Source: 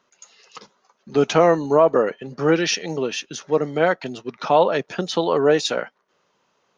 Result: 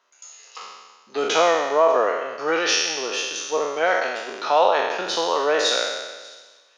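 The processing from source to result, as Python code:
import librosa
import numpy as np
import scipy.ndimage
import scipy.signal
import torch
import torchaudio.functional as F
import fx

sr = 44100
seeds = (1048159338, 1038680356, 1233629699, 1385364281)

y = fx.spec_trails(x, sr, decay_s=1.34)
y = scipy.signal.sosfilt(scipy.signal.butter(2, 560.0, 'highpass', fs=sr, output='sos'), y)
y = fx.echo_wet_highpass(y, sr, ms=591, feedback_pct=57, hz=3600.0, wet_db=-21)
y = F.gain(torch.from_numpy(y), -1.5).numpy()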